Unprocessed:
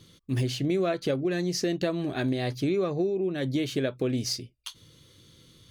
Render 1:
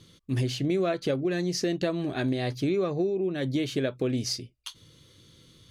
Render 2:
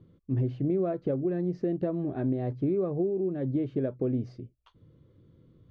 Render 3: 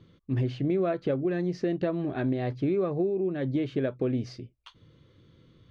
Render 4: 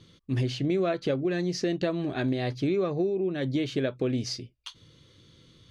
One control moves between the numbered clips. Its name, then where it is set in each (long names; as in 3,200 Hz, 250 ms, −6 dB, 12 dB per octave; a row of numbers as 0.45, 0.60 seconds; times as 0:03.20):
Bessel low-pass filter, frequency: 12,000, 590, 1,500, 4,600 Hertz